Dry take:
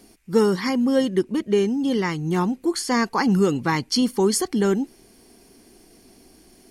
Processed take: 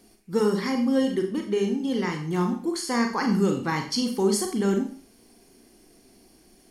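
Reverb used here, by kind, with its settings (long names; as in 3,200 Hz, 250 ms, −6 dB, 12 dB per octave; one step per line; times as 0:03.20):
four-comb reverb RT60 0.44 s, combs from 30 ms, DRR 3.5 dB
level −5.5 dB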